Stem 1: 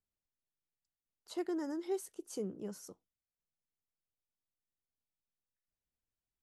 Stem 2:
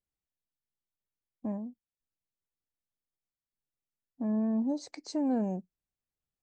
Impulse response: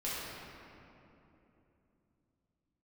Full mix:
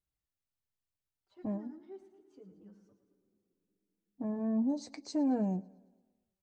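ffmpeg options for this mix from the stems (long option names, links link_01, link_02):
-filter_complex "[0:a]lowpass=2800,bandreject=frequency=470:width=12,asplit=2[link_01][link_02];[link_02]adelay=4.4,afreqshift=1.3[link_03];[link_01][link_03]amix=inputs=2:normalize=1,volume=-10dB,asplit=3[link_04][link_05][link_06];[link_05]volume=-17.5dB[link_07];[link_06]volume=-10.5dB[link_08];[1:a]volume=1.5dB,asplit=2[link_09][link_10];[link_10]volume=-24dB[link_11];[2:a]atrim=start_sample=2205[link_12];[link_07][link_12]afir=irnorm=-1:irlink=0[link_13];[link_08][link_11]amix=inputs=2:normalize=0,aecho=0:1:111|222|333|444|555|666|777|888:1|0.56|0.314|0.176|0.0983|0.0551|0.0308|0.0173[link_14];[link_04][link_09][link_13][link_14]amix=inputs=4:normalize=0,equalizer=frequency=72:width_type=o:width=1.4:gain=13.5,flanger=delay=6.2:depth=1.9:regen=-44:speed=0.73:shape=triangular"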